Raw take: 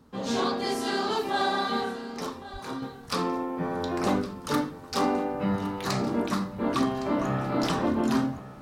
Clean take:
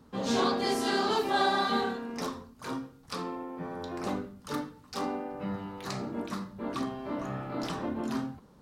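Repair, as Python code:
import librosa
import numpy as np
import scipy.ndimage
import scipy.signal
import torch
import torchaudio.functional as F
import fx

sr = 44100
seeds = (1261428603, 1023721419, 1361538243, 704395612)

y = fx.fix_declip(x, sr, threshold_db=-16.0)
y = fx.highpass(y, sr, hz=140.0, slope=24, at=(2.52, 2.64), fade=0.02)
y = fx.fix_echo_inverse(y, sr, delay_ms=1112, level_db=-16.0)
y = fx.gain(y, sr, db=fx.steps((0.0, 0.0), (2.82, -8.0)))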